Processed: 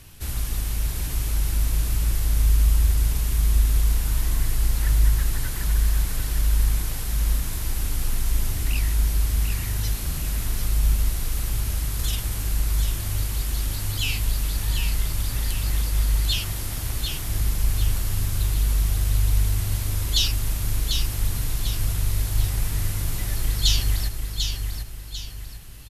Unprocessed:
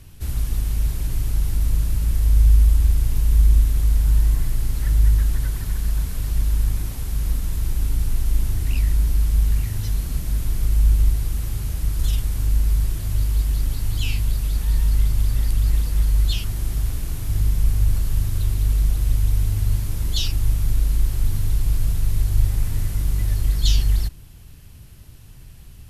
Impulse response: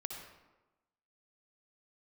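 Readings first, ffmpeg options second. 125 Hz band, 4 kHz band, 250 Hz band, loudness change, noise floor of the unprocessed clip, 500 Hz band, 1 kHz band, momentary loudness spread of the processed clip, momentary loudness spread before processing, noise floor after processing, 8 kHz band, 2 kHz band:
−3.5 dB, +5.5 dB, −1.5 dB, −2.5 dB, −42 dBFS, +1.5 dB, +4.0 dB, 6 LU, 7 LU, −32 dBFS, +5.5 dB, +5.0 dB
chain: -filter_complex "[0:a]lowshelf=frequency=420:gain=-9,asplit=2[link_01][link_02];[link_02]aecho=0:1:745|1490|2235|2980|3725:0.501|0.195|0.0762|0.0297|0.0116[link_03];[link_01][link_03]amix=inputs=2:normalize=0,volume=4.5dB"

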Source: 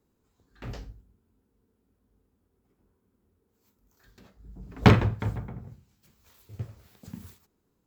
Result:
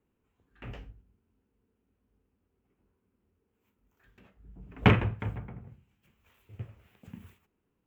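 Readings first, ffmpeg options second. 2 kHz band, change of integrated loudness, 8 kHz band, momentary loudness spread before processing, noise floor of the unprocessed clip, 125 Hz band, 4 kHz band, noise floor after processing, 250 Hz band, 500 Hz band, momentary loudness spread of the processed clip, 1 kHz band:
−1.0 dB, −4.0 dB, can't be measured, 22 LU, −75 dBFS, −4.5 dB, −3.5 dB, −79 dBFS, −4.5 dB, −4.5 dB, 22 LU, −4.0 dB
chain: -af "highshelf=frequency=3500:width_type=q:width=3:gain=-8,volume=-4.5dB"

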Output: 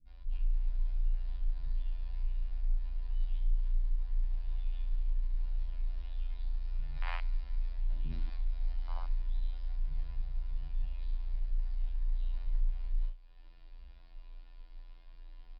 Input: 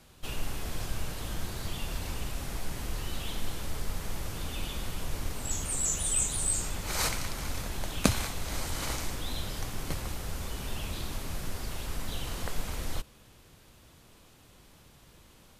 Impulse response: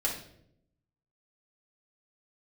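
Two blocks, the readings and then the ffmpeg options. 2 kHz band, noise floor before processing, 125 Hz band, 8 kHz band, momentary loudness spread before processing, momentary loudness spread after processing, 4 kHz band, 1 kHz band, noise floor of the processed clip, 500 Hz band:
−15.0 dB, −57 dBFS, −4.0 dB, below −40 dB, 10 LU, 19 LU, −22.0 dB, −14.0 dB, −52 dBFS, −23.0 dB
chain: -filter_complex "[0:a]aresample=11025,asoftclip=type=tanh:threshold=-23dB,aresample=44100,acrossover=split=280[link_01][link_02];[link_02]adelay=70[link_03];[link_01][link_03]amix=inputs=2:normalize=0[link_04];[1:a]atrim=start_sample=2205,atrim=end_sample=3969,asetrate=57330,aresample=44100[link_05];[link_04][link_05]afir=irnorm=-1:irlink=0,acompressor=threshold=-47dB:ratio=2,afftfilt=real='hypot(re,im)*cos(PI*b)':imag='0':win_size=2048:overlap=0.75,afwtdn=0.00447,afreqshift=-29,volume=8dB"

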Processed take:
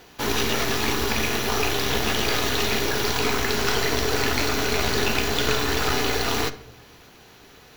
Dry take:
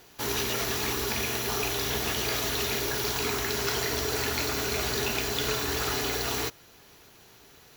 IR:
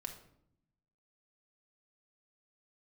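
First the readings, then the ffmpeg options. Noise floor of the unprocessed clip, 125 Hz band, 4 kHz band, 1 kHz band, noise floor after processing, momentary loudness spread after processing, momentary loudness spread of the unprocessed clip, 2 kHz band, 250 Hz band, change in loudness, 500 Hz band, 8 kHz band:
−55 dBFS, +6.0 dB, +5.0 dB, +7.0 dB, −50 dBFS, 1 LU, 1 LU, +6.5 dB, +7.5 dB, +5.0 dB, +6.0 dB, +2.0 dB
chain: -filter_complex "[0:a]highshelf=frequency=9300:gain=-4,aeval=exprs='0.211*(cos(1*acos(clip(val(0)/0.211,-1,1)))-cos(1*PI/2))+0.0376*(cos(4*acos(clip(val(0)/0.211,-1,1)))-cos(4*PI/2))':channel_layout=same,asplit=2[link_01][link_02];[1:a]atrim=start_sample=2205,lowpass=5800[link_03];[link_02][link_03]afir=irnorm=-1:irlink=0,volume=-0.5dB[link_04];[link_01][link_04]amix=inputs=2:normalize=0,volume=2.5dB"

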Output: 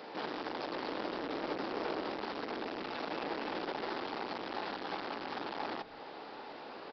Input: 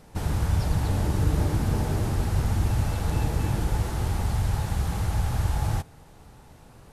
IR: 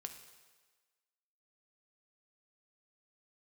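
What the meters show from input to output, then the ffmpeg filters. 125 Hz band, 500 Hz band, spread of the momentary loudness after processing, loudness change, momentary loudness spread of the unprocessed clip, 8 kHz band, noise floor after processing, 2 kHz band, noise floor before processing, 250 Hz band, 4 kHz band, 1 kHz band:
−34.5 dB, −2.5 dB, 9 LU, −13.0 dB, 3 LU, below −25 dB, −48 dBFS, −2.5 dB, −51 dBFS, −9.5 dB, −2.5 dB, −3.0 dB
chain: -filter_complex "[0:a]aresample=11025,volume=29.5dB,asoftclip=hard,volume=-29.5dB,aresample=44100,acompressor=threshold=-42dB:ratio=2.5,highpass=frequency=300:width=0.5412,highpass=frequency=300:width=1.3066,asplit=5[link_01][link_02][link_03][link_04][link_05];[link_02]adelay=98,afreqshift=-140,volume=-22dB[link_06];[link_03]adelay=196,afreqshift=-280,volume=-27.4dB[link_07];[link_04]adelay=294,afreqshift=-420,volume=-32.7dB[link_08];[link_05]adelay=392,afreqshift=-560,volume=-38.1dB[link_09];[link_01][link_06][link_07][link_08][link_09]amix=inputs=5:normalize=0,volume=9dB"

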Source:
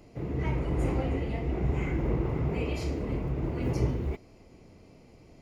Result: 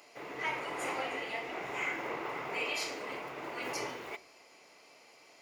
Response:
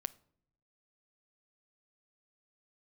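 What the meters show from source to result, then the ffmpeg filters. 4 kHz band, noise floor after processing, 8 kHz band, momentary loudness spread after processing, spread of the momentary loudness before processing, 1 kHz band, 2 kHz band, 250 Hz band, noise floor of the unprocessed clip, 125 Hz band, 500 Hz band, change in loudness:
+7.5 dB, −60 dBFS, can't be measured, 7 LU, 3 LU, +3.5 dB, +7.5 dB, −14.5 dB, −55 dBFS, −28.0 dB, −6.0 dB, −6.0 dB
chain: -filter_complex "[0:a]highpass=1000[link_01];[1:a]atrim=start_sample=2205[link_02];[link_01][link_02]afir=irnorm=-1:irlink=0,volume=9dB"

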